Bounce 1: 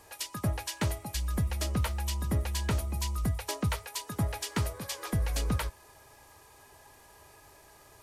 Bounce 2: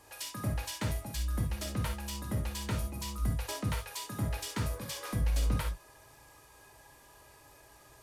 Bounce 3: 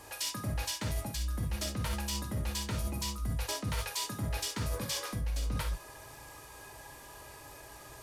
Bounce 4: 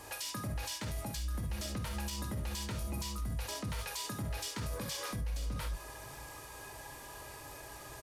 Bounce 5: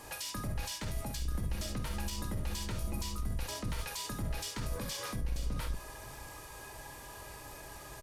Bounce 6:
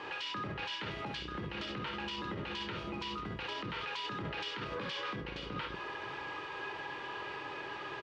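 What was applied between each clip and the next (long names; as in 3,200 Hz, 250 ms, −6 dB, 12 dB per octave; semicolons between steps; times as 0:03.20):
in parallel at −11 dB: wave folding −33.5 dBFS; on the sum: reverb whose tail is shaped and stops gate 90 ms flat, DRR 1.5 dB; level −6 dB
dynamic equaliser 5,200 Hz, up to +4 dB, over −52 dBFS, Q 1; reversed playback; downward compressor 6 to 1, threshold −39 dBFS, peak gain reduction 13 dB; reversed playback; level +7.5 dB
brickwall limiter −32 dBFS, peak gain reduction 9 dB; single-tap delay 531 ms −20.5 dB; level +1.5 dB
sub-octave generator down 2 octaves, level −1 dB
loudspeaker in its box 230–3,500 Hz, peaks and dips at 240 Hz −8 dB, 370 Hz +4 dB, 640 Hz −9 dB, 1,400 Hz +3 dB, 2,900 Hz +5 dB; brickwall limiter −39 dBFS, peak gain reduction 10.5 dB; level +8.5 dB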